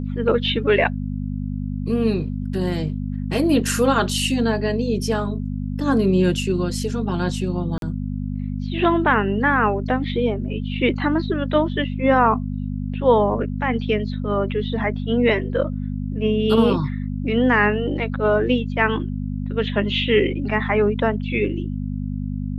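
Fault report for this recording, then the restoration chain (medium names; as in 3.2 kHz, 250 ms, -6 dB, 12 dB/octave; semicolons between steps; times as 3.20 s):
hum 50 Hz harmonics 5 -26 dBFS
7.78–7.82 s: dropout 42 ms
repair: de-hum 50 Hz, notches 5; interpolate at 7.78 s, 42 ms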